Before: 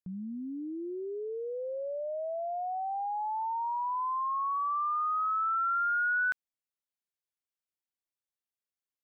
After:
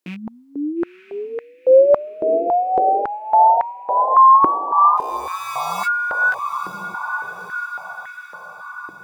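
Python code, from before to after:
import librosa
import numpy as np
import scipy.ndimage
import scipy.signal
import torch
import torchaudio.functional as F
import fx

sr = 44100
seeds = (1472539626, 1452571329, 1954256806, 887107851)

p1 = fx.rattle_buzz(x, sr, strikes_db=-46.0, level_db=-40.0)
p2 = fx.rider(p1, sr, range_db=4, speed_s=0.5)
p3 = p1 + F.gain(torch.from_numpy(p2), 1.0).numpy()
p4 = fx.sample_hold(p3, sr, seeds[0], rate_hz=1200.0, jitter_pct=0, at=(4.95, 5.85), fade=0.02)
p5 = fx.wow_flutter(p4, sr, seeds[1], rate_hz=2.1, depth_cents=22.0)
p6 = fx.doubler(p5, sr, ms=17.0, db=-6.0)
p7 = p6 + fx.echo_diffused(p6, sr, ms=956, feedback_pct=55, wet_db=-10, dry=0)
p8 = fx.filter_held_highpass(p7, sr, hz=3.6, low_hz=330.0, high_hz=1900.0)
y = F.gain(torch.from_numpy(p8), 4.0).numpy()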